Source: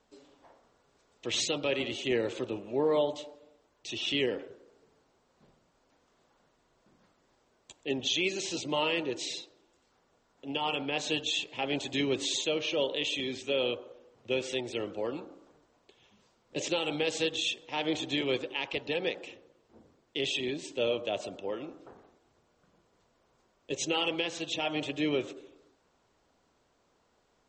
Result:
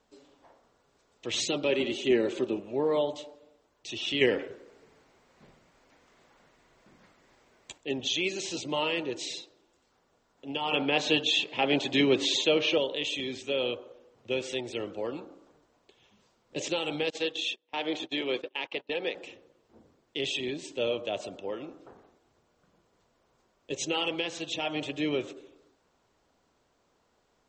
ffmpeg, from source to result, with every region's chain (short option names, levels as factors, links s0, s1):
-filter_complex "[0:a]asettb=1/sr,asplit=3[s0][s1][s2];[s0]atrim=end=1.484[s3];[s1]atrim=start=1.48:end=2.6,asetpts=PTS-STARTPTS,afade=t=in:d=0.004:c=qsin,afade=t=out:st=1.116:d=0.004:c=qsin,equalizer=f=300:w=2.3:g=8.5,aecho=1:1:5.1:0.47,atrim=end_sample=49392[s4];[s2]atrim=start=2.596[s5];[s3][s4]acrossfade=d=0.004:c1=hsin:c2=qsin[s6];[s6][s5]acrossfade=d=0.004:c1=qsin:c2=hsin,asettb=1/sr,asplit=3[s7][s8][s9];[s7]atrim=end=4.214[s10];[s8]atrim=start=4.21:end=7.78,asetpts=PTS-STARTPTS,afade=t=in:d=0.004:c=qsin,afade=t=out:st=3.566:d=0.004:c=qsin,acontrast=45,equalizer=f=2100:w=2.1:g=7[s11];[s9]atrim=start=7.776[s12];[s10][s11]acrossfade=d=0.004:c1=hsin:c2=qsin[s13];[s13][s12]acrossfade=d=0.004:c1=qsin:c2=hsin,asettb=1/sr,asplit=3[s14][s15][s16];[s14]atrim=end=10.714[s17];[s15]atrim=start=10.71:end=12.78,asetpts=PTS-STARTPTS,afade=t=in:d=0.004:c=qsin,afade=t=out:st=2.066:d=0.004:c=qsin,highpass=130,lowpass=4700,acontrast=62[s18];[s16]atrim=start=12.776[s19];[s17][s18]acrossfade=d=0.004:c1=hsin:c2=qsin[s20];[s20][s19]acrossfade=d=0.004:c1=qsin:c2=hsin,asettb=1/sr,asplit=3[s21][s22][s23];[s21]atrim=end=17.104[s24];[s22]atrim=start=17.1:end=19.15,asetpts=PTS-STARTPTS,afade=t=in:d=0.004:c=qsin,afade=t=out:st=2.046:d=0.004:c=qsin,highpass=250,lowpass=5200,agate=range=0.0631:threshold=0.01:ratio=16:release=100:detection=peak[s25];[s23]atrim=start=19.146[s26];[s24][s25]acrossfade=d=0.004:c1=hsin:c2=qsin[s27];[s27][s26]acrossfade=d=0.004:c1=qsin:c2=hsin"